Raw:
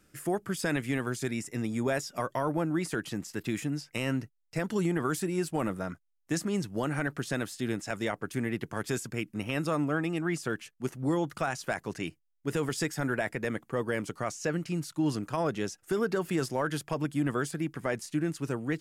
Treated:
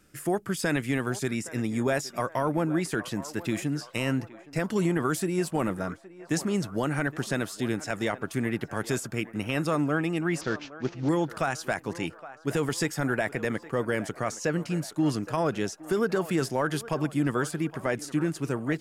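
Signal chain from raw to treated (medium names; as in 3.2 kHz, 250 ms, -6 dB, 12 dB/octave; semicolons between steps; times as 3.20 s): 10.41–11.09 s: CVSD coder 32 kbps; band-passed feedback delay 817 ms, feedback 61%, band-pass 870 Hz, level -14 dB; trim +3 dB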